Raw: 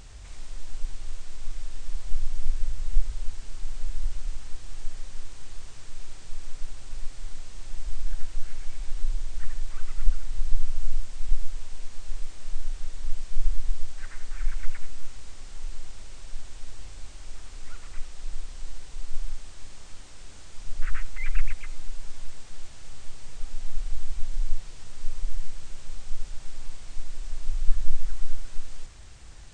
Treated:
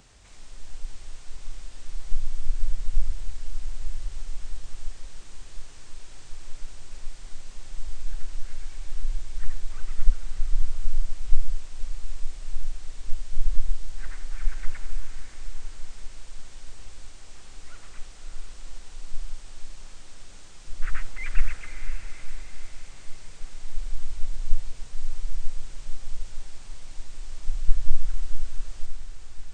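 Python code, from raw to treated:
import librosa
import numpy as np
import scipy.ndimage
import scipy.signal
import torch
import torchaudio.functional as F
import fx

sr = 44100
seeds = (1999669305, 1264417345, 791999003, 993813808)

y = fx.echo_diffused(x, sr, ms=537, feedback_pct=57, wet_db=-6.5)
y = fx.band_widen(y, sr, depth_pct=40)
y = y * librosa.db_to_amplitude(-1.5)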